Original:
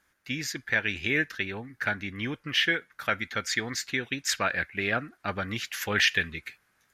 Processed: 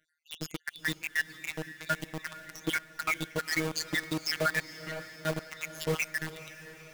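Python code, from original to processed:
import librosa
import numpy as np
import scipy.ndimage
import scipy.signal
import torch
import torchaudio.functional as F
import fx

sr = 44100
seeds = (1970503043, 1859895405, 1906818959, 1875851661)

p1 = fx.spec_dropout(x, sr, seeds[0], share_pct=73)
p2 = fx.high_shelf(p1, sr, hz=7600.0, db=-5.5)
p3 = fx.notch(p2, sr, hz=420.0, q=12.0)
p4 = fx.notch_comb(p3, sr, f0_hz=820.0)
p5 = fx.robotise(p4, sr, hz=158.0)
p6 = fx.quant_companded(p5, sr, bits=2)
p7 = p5 + F.gain(torch.from_numpy(p6), -4.0).numpy()
p8 = fx.clip_hard(p7, sr, threshold_db=-35.5, at=(4.69, 5.12))
y = p8 + fx.echo_diffused(p8, sr, ms=461, feedback_pct=63, wet_db=-15.0, dry=0)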